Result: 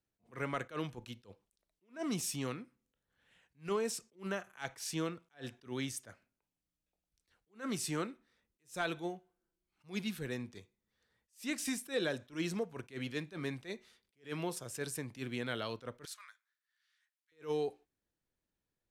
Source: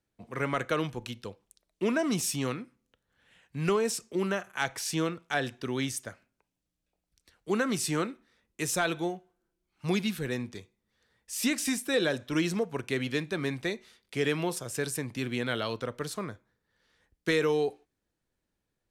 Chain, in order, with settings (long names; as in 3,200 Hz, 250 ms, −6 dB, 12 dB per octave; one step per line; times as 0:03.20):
0:16.05–0:17.32: high-pass filter 1,400 Hz 24 dB per octave
level that may rise only so fast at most 250 dB per second
level −7 dB